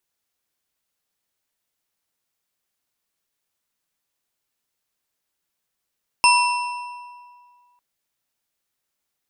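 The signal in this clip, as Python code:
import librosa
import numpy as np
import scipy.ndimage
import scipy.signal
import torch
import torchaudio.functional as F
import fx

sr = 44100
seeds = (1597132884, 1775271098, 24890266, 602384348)

y = fx.strike_metal(sr, length_s=1.55, level_db=-12.5, body='bar', hz=978.0, decay_s=1.96, tilt_db=2.5, modes=4)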